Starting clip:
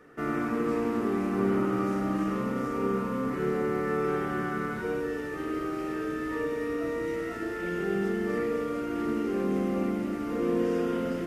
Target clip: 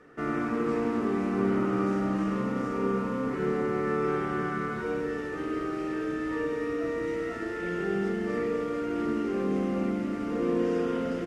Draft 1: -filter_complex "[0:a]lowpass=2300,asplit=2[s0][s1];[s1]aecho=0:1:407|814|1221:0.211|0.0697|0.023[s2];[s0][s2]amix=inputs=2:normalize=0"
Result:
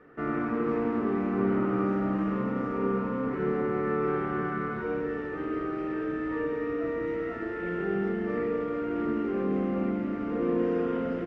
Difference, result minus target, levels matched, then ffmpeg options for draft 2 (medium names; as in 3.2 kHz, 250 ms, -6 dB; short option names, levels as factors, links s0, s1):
8 kHz band -18.0 dB
-filter_complex "[0:a]lowpass=7900,asplit=2[s0][s1];[s1]aecho=0:1:407|814|1221:0.211|0.0697|0.023[s2];[s0][s2]amix=inputs=2:normalize=0"